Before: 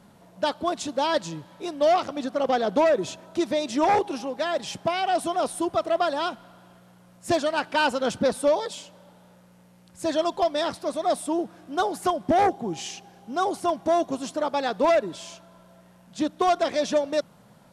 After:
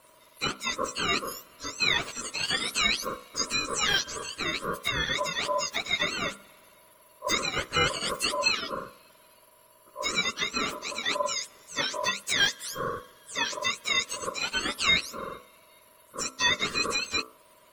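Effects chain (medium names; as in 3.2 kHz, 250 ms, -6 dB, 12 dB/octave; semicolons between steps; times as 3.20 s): spectrum inverted on a logarithmic axis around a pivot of 1.4 kHz; hum notches 60/120/180/240/300/360/420/480/540/600 Hz; ring modulator 800 Hz; trim +3 dB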